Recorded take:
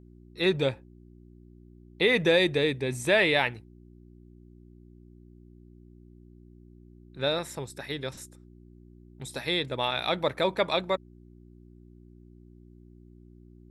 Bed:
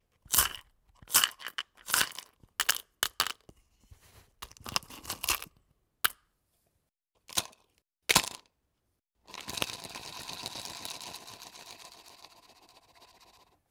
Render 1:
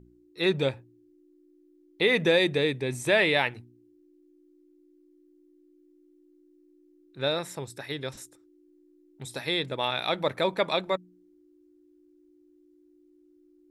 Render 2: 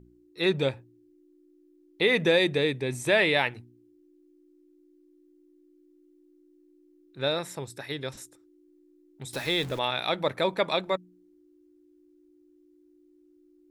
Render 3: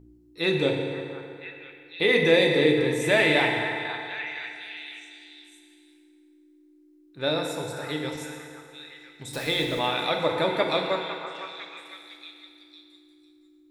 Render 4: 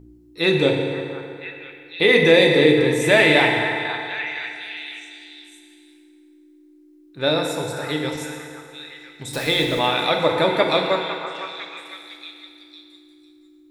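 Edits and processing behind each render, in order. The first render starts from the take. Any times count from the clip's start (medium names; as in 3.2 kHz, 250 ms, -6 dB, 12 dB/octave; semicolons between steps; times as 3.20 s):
de-hum 60 Hz, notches 4
9.33–9.79 s: jump at every zero crossing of -36.5 dBFS
repeats whose band climbs or falls 504 ms, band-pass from 1.2 kHz, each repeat 0.7 oct, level -7 dB; FDN reverb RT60 2.5 s, low-frequency decay 0.8×, high-frequency decay 0.7×, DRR 0.5 dB
trim +6 dB; peak limiter -2 dBFS, peak gain reduction 1.5 dB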